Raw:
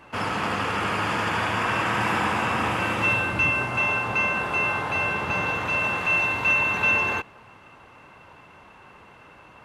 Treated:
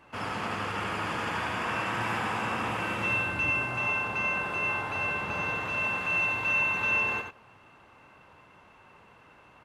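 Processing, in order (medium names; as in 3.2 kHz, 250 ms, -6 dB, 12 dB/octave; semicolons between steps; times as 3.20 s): delay 89 ms -6 dB; trim -7.5 dB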